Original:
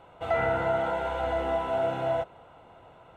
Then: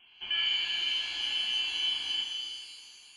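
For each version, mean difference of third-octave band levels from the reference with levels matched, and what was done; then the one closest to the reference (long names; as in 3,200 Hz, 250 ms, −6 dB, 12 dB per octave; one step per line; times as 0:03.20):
15.0 dB: Butterworth high-pass 330 Hz
voice inversion scrambler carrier 3,700 Hz
reverb with rising layers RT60 2 s, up +7 semitones, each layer −8 dB, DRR 1.5 dB
level −6 dB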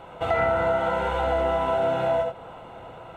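2.5 dB: reverb whose tail is shaped and stops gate 100 ms rising, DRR 4.5 dB
downward compressor 2 to 1, threshold −34 dBFS, peak gain reduction 7.5 dB
level +9 dB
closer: second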